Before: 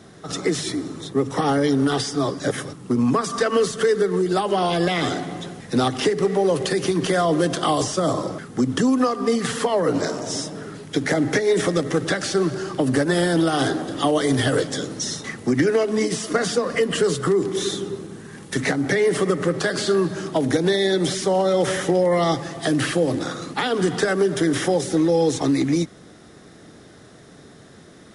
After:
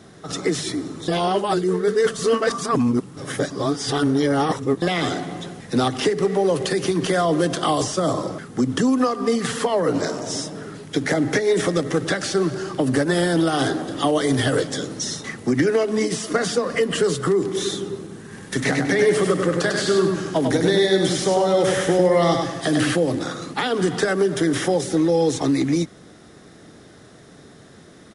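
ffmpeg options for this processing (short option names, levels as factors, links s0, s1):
-filter_complex "[0:a]asplit=3[s0][s1][s2];[s0]afade=t=out:st=18.3:d=0.02[s3];[s1]aecho=1:1:99|198|297|396:0.631|0.215|0.0729|0.0248,afade=t=in:st=18.3:d=0.02,afade=t=out:st=22.95:d=0.02[s4];[s2]afade=t=in:st=22.95:d=0.02[s5];[s3][s4][s5]amix=inputs=3:normalize=0,asplit=3[s6][s7][s8];[s6]atrim=end=1.082[s9];[s7]atrim=start=1.078:end=4.822,asetpts=PTS-STARTPTS,areverse[s10];[s8]atrim=start=4.818[s11];[s9][s10]acrossfade=d=0.004:c1=hsin:c2=hsin[s12];[s12][s11]acrossfade=d=0.004:c1=hsin:c2=hsin"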